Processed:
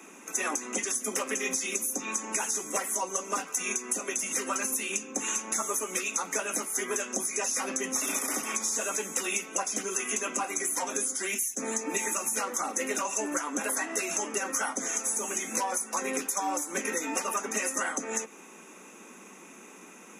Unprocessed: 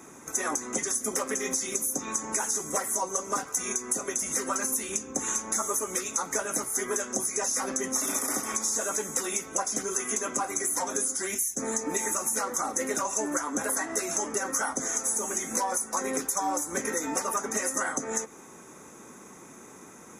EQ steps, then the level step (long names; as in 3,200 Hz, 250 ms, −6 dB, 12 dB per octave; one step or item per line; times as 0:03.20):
Butterworth high-pass 170 Hz 96 dB per octave
parametric band 2,700 Hz +14.5 dB 0.45 octaves
−2.0 dB